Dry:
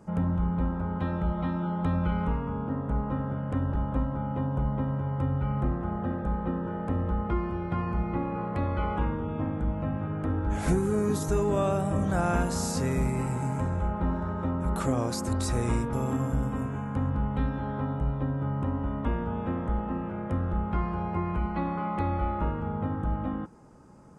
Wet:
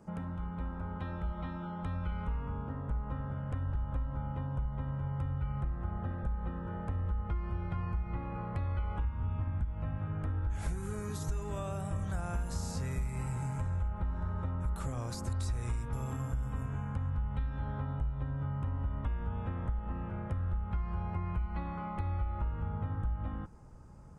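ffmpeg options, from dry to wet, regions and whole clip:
-filter_complex "[0:a]asettb=1/sr,asplit=3[a][b][c];[a]atrim=end=9.044[d];[b]atrim=start=9.04:end=9.65,asetpts=PTS-STARTPTS,afade=t=in:d=0.004:c=qsin,afade=t=out:st=0.606:d=0.004:c=qsin,equalizer=f=75:w=1.3:g=11.5,bandreject=f=470:w=11,asplit=2[e][f];[f]adelay=43,volume=-7dB[g];[e][g]amix=inputs=2:normalize=0,atrim=end_sample=26901[h];[c]atrim=start=9.646[i];[d][h]acrossfade=d=0.004:c1=hsin:c2=qsin[j];[j][i]acrossfade=d=0.004:c1=qsin:c2=hsin,acrossover=split=1100|6900[k][l][m];[k]acompressor=threshold=-33dB:ratio=4[n];[l]acompressor=threshold=-42dB:ratio=4[o];[m]acompressor=threshold=-47dB:ratio=4[p];[n][o][p]amix=inputs=3:normalize=0,asubboost=boost=6:cutoff=100,acompressor=threshold=-25dB:ratio=6,volume=-4.5dB"

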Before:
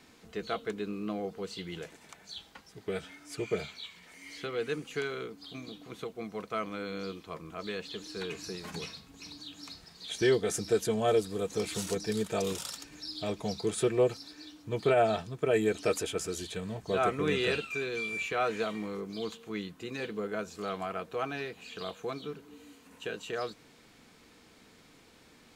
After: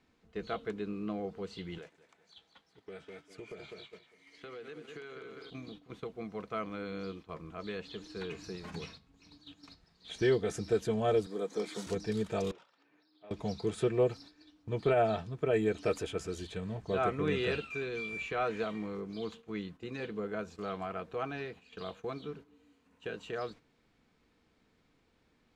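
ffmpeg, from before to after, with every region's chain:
-filter_complex "[0:a]asettb=1/sr,asplit=3[a][b][c];[a]atrim=end=1.784[d];[b]atrim=start=1.78:end=5.5,asetpts=PTS-STARTPTS,afade=t=in:d=0.004:c=qsin,afade=t=out:st=3.716:d=0.004:c=qsin,highpass=f=290:p=1,aecho=1:1:200|400|600|800|1000:0.355|0.153|0.0656|0.0282|0.0121,atrim=end_sample=164052,acompressor=threshold=-40dB:ratio=5:attack=3.2:release=140:knee=1:detection=peak[e];[c]atrim=start=5.496[f];[d][e]acrossfade=d=0.004:c1=hsin:c2=qsin[g];[g][f]acrossfade=d=0.004:c1=qsin:c2=hsin,asettb=1/sr,asplit=3[h][i][j];[h]atrim=end=11.264[k];[i]atrim=start=11.26:end=11.87,asetpts=PTS-STARTPTS,afade=t=in:d=0.004:c=qsin,afade=t=out:st=0.606:d=0.004:c=qsin,highpass=f=210:w=0.5412,highpass=f=210:w=1.3066,bandreject=f=2.7k:w=5.5[l];[j]atrim=start=11.866[m];[k][l]acrossfade=d=0.004:c1=hsin:c2=qsin[n];[n][m]acrossfade=d=0.004:c1=qsin:c2=hsin,asettb=1/sr,asplit=3[o][p][q];[o]atrim=end=12.514[r];[p]atrim=start=12.51:end=13.31,asetpts=PTS-STARTPTS,afade=t=in:d=0.004:c=qsin,afade=t=out:st=0.796:d=0.004:c=qsin,acompressor=threshold=-42dB:ratio=6:attack=3.2:release=140:knee=1:detection=peak,highpass=370,lowpass=2.4k[s];[q]atrim=start=13.306[t];[r][s]acrossfade=d=0.004:c1=hsin:c2=qsin[u];[u][t]acrossfade=d=0.004:c1=qsin:c2=hsin,aemphasis=mode=reproduction:type=50fm,agate=range=-10dB:threshold=-47dB:ratio=16:detection=peak,lowshelf=f=93:g=9,volume=-3dB"

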